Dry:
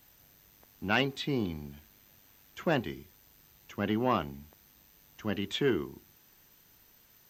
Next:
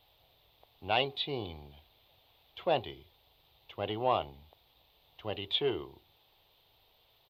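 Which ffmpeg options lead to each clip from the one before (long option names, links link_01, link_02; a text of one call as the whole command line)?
ffmpeg -i in.wav -af "firequalizer=gain_entry='entry(110,0);entry(200,-13);entry(440,3);entry(740,8);entry(1600,-10);entry(2200,-1);entry(3600,10);entry(6300,-22);entry(10000,-11)':delay=0.05:min_phase=1,volume=-3.5dB" out.wav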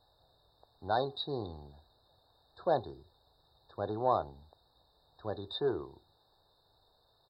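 ffmpeg -i in.wav -af "afftfilt=real='re*eq(mod(floor(b*sr/1024/1800),2),0)':imag='im*eq(mod(floor(b*sr/1024/1800),2),0)':win_size=1024:overlap=0.75" out.wav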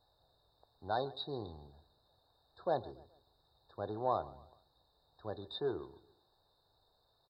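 ffmpeg -i in.wav -af "aecho=1:1:141|282|423:0.0944|0.0378|0.0151,volume=-4.5dB" out.wav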